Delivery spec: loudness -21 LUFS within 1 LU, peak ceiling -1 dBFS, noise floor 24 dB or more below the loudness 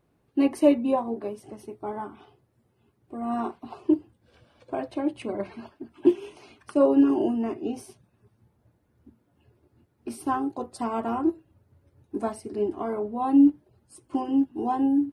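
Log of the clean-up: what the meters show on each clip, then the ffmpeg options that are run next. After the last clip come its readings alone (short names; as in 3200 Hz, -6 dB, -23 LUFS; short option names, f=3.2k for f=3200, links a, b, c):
loudness -26.0 LUFS; peak -7.5 dBFS; loudness target -21.0 LUFS
-> -af "volume=5dB"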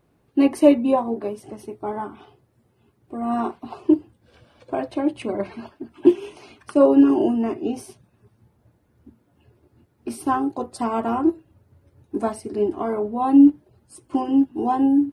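loudness -21.0 LUFS; peak -2.5 dBFS; noise floor -64 dBFS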